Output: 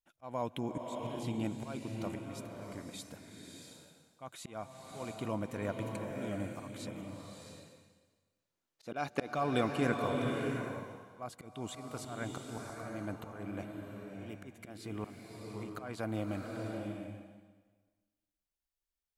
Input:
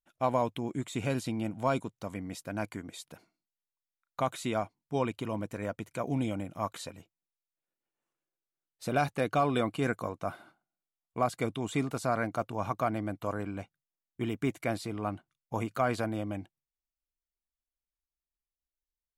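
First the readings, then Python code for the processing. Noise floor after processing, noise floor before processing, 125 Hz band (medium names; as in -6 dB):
under -85 dBFS, under -85 dBFS, -5.0 dB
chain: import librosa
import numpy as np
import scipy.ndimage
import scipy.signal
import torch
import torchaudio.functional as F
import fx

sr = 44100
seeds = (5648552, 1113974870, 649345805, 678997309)

y = fx.spec_box(x, sr, start_s=8.39, length_s=0.96, low_hz=220.0, high_hz=7400.0, gain_db=7)
y = fx.auto_swell(y, sr, attack_ms=366.0)
y = fx.rev_bloom(y, sr, seeds[0], attack_ms=690, drr_db=2.0)
y = y * 10.0 ** (-2.0 / 20.0)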